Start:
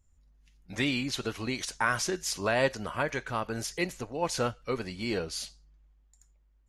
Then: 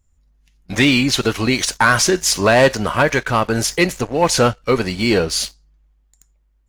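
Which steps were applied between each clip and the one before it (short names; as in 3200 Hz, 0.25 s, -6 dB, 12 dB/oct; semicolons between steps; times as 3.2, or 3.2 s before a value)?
sample leveller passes 2; gain +8.5 dB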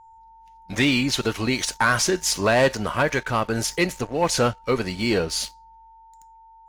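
whine 900 Hz -41 dBFS; gain -6 dB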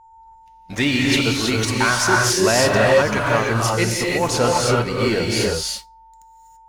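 non-linear reverb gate 0.36 s rising, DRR -2.5 dB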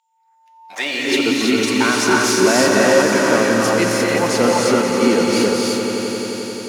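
high-pass sweep 3200 Hz -> 240 Hz, 0.01–1.38; swelling echo 88 ms, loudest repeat 5, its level -11.5 dB; gain -1 dB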